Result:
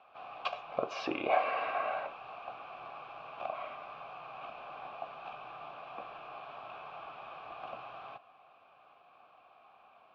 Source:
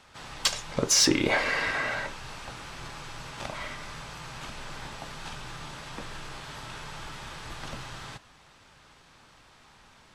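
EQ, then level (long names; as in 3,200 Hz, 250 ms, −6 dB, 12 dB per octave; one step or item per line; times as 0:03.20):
formant filter a
low-pass filter 4,200 Hz 12 dB per octave
high-frequency loss of the air 160 metres
+8.5 dB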